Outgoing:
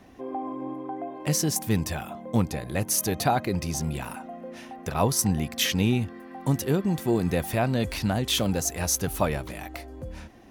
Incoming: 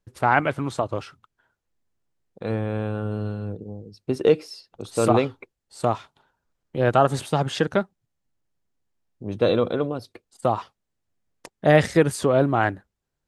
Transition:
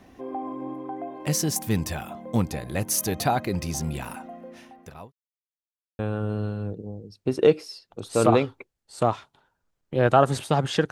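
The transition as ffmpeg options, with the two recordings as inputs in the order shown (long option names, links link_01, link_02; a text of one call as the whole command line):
ffmpeg -i cue0.wav -i cue1.wav -filter_complex "[0:a]apad=whole_dur=10.91,atrim=end=10.91,asplit=2[link_01][link_02];[link_01]atrim=end=5.12,asetpts=PTS-STARTPTS,afade=type=out:start_time=4.19:duration=0.93[link_03];[link_02]atrim=start=5.12:end=5.99,asetpts=PTS-STARTPTS,volume=0[link_04];[1:a]atrim=start=2.81:end=7.73,asetpts=PTS-STARTPTS,afade=type=in:duration=0.004:curve=hsin[link_05];[link_03][link_04][link_05]concat=n=3:v=0:a=1" out.wav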